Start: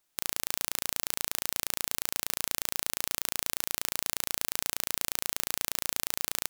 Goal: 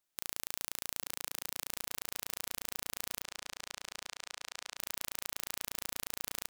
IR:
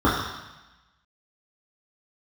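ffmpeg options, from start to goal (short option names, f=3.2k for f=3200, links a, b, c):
-filter_complex "[0:a]asettb=1/sr,asplit=3[a][b][c];[a]atrim=end=1.024[d];[b]atrim=start=1.02:end=1.69,asetpts=PTS-STARTPTS,afade=t=in:d=0.004:c=qsin,afade=t=out:st=0.666:d=0.004:c=qsin,highpass=300[e];[c]atrim=start=1.686[f];[d][e]acrossfade=d=0.004:c1=hsin:c2=qsin[g];[g][f]acrossfade=d=0.004:c1=qsin:c2=hsin,asettb=1/sr,asplit=3[h][i][j];[h]atrim=end=3.224[k];[i]atrim=start=3.22:end=4.77,asetpts=PTS-STARTPTS,afade=t=in:d=0.004:c=qsin,afade=t=out:st=1.546:d=0.004:c=qsin,acrossover=split=530 7800:gain=0.141 1 0.0631[l][m][n];[l][m][n]amix=inputs=3:normalize=0[o];[j]atrim=start=4.766[p];[k][o]acrossfade=d=0.004:c1=hsin:c2=qsin[q];[q][p]acrossfade=d=0.004:c1=qsin:c2=hsin,asplit=2[r][s];[s]adelay=841,lowpass=f=2.4k:p=1,volume=-6.5dB,asplit=2[t][u];[u]adelay=841,lowpass=f=2.4k:p=1,volume=0.15,asplit=2[v][w];[w]adelay=841,lowpass=f=2.4k:p=1,volume=0.15[x];[r][t][v][x]amix=inputs=4:normalize=0,volume=-8dB"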